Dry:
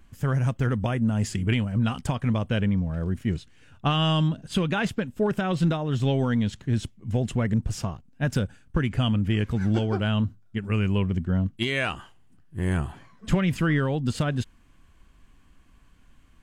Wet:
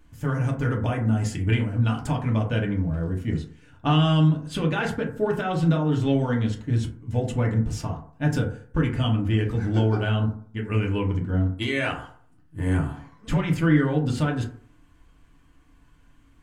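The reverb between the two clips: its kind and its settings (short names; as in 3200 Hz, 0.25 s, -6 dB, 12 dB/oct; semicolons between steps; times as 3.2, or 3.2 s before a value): FDN reverb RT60 0.53 s, low-frequency decay 0.9×, high-frequency decay 0.35×, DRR -1.5 dB; gain -3 dB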